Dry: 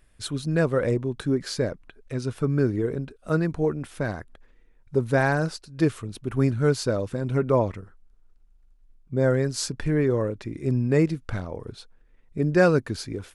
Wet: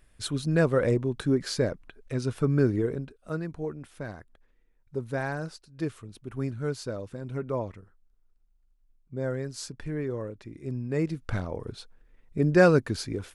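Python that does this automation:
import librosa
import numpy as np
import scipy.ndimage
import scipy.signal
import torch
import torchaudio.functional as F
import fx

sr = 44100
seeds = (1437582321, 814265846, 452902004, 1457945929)

y = fx.gain(x, sr, db=fx.line((2.77, -0.5), (3.38, -9.5), (10.89, -9.5), (11.33, 0.0)))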